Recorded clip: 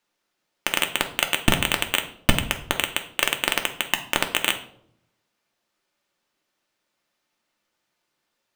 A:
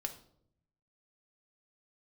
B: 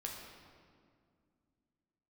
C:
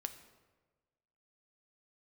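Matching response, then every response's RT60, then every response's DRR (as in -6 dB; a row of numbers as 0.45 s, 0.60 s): A; 0.70 s, 2.1 s, 1.3 s; 4.5 dB, -1.5 dB, 7.5 dB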